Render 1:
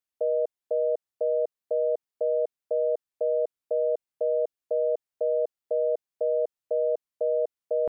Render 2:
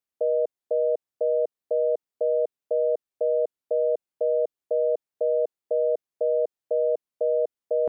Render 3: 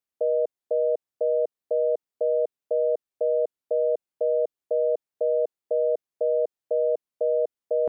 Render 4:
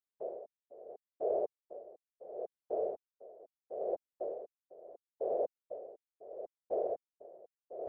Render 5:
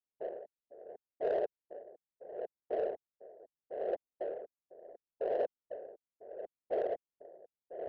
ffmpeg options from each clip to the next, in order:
ffmpeg -i in.wav -af "equalizer=frequency=340:width_type=o:width=2.6:gain=5,volume=-2dB" out.wav
ffmpeg -i in.wav -af anull out.wav
ffmpeg -i in.wav -af "afftfilt=real='hypot(re,im)*cos(2*PI*random(0))':imag='hypot(re,im)*sin(2*PI*random(1))':win_size=512:overlap=0.75,aeval=exprs='val(0)*pow(10,-22*(0.5-0.5*cos(2*PI*0.74*n/s))/20)':channel_layout=same,volume=-3.5dB" out.wav
ffmpeg -i in.wav -af "asoftclip=type=hard:threshold=-25.5dB,adynamicsmooth=sensitivity=5.5:basefreq=940,volume=1dB" out.wav

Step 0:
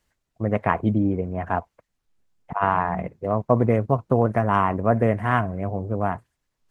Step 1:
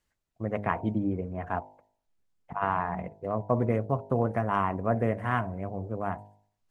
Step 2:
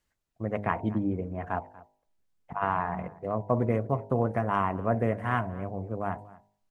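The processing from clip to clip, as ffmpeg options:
ffmpeg -i in.wav -af "bandreject=frequency=51.27:width_type=h:width=4,bandreject=frequency=102.54:width_type=h:width=4,bandreject=frequency=153.81:width_type=h:width=4,bandreject=frequency=205.08:width_type=h:width=4,bandreject=frequency=256.35:width_type=h:width=4,bandreject=frequency=307.62:width_type=h:width=4,bandreject=frequency=358.89:width_type=h:width=4,bandreject=frequency=410.16:width_type=h:width=4,bandreject=frequency=461.43:width_type=h:width=4,bandreject=frequency=512.7:width_type=h:width=4,bandreject=frequency=563.97:width_type=h:width=4,bandreject=frequency=615.24:width_type=h:width=4,bandreject=frequency=666.51:width_type=h:width=4,bandreject=frequency=717.78:width_type=h:width=4,bandreject=frequency=769.05:width_type=h:width=4,bandreject=frequency=820.32:width_type=h:width=4,bandreject=frequency=871.59:width_type=h:width=4,bandreject=frequency=922.86:width_type=h:width=4,bandreject=frequency=974.13:width_type=h:width=4,volume=-6.5dB" out.wav
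ffmpeg -i in.wav -filter_complex "[0:a]asplit=2[link_01][link_02];[link_02]adelay=239.1,volume=-20dB,highshelf=frequency=4000:gain=-5.38[link_03];[link_01][link_03]amix=inputs=2:normalize=0" out.wav

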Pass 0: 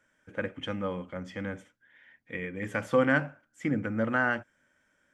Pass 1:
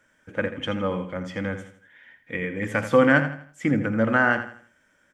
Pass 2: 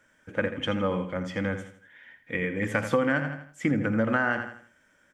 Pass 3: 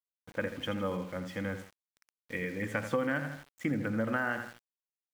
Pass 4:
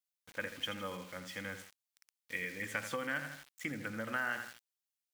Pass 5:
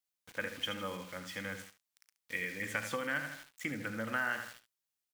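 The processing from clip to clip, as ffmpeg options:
ffmpeg -i in.wav -af "aecho=1:1:82|164|246|328:0.282|0.101|0.0365|0.0131,volume=6.5dB" out.wav
ffmpeg -i in.wav -af "acompressor=threshold=-20dB:ratio=10" out.wav
ffmpeg -i in.wav -af "aeval=exprs='val(0)*gte(abs(val(0)),0.00841)':channel_layout=same,volume=-6.5dB" out.wav
ffmpeg -i in.wav -af "tiltshelf=frequency=1300:gain=-8,volume=-3.5dB" out.wav
ffmpeg -i in.wav -af "aecho=1:1:36|72:0.133|0.2,volume=1.5dB" out.wav

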